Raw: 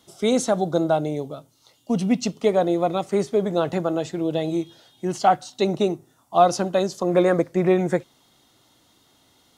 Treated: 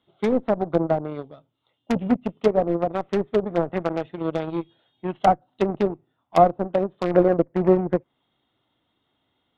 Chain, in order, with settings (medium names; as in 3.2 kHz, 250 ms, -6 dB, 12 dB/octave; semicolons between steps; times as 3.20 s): resampled via 8 kHz; Chebyshev shaper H 4 -31 dB, 7 -18 dB, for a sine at -3.5 dBFS; in parallel at -4 dB: integer overflow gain 18.5 dB; on the sum: low-pass that closes with the level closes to 750 Hz, closed at -19.5 dBFS; trim +3 dB